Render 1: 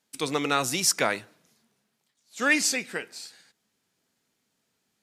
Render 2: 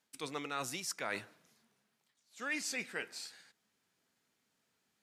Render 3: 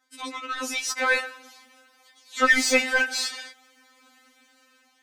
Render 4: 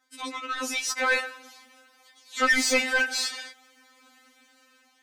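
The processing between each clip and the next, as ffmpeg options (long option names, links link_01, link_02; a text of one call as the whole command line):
ffmpeg -i in.wav -af "areverse,acompressor=threshold=-33dB:ratio=5,areverse,equalizer=frequency=1500:width=0.6:gain=4,volume=-5.5dB" out.wav
ffmpeg -i in.wav -filter_complex "[0:a]dynaudnorm=framelen=420:gausssize=5:maxgain=13.5dB,asplit=2[link_01][link_02];[link_02]highpass=frequency=720:poles=1,volume=17dB,asoftclip=type=tanh:threshold=-11.5dB[link_03];[link_01][link_03]amix=inputs=2:normalize=0,lowpass=frequency=2900:poles=1,volume=-6dB,afftfilt=real='re*3.46*eq(mod(b,12),0)':imag='im*3.46*eq(mod(b,12),0)':win_size=2048:overlap=0.75,volume=3.5dB" out.wav
ffmpeg -i in.wav -af "asoftclip=type=tanh:threshold=-15dB" out.wav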